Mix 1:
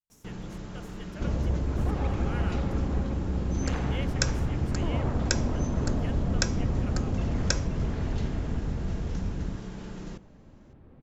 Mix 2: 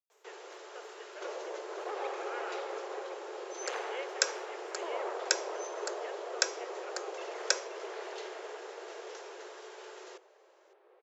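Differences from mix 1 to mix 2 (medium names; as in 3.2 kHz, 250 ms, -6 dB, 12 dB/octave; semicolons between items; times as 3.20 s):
speech: add boxcar filter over 9 samples; master: add steep high-pass 370 Hz 96 dB/octave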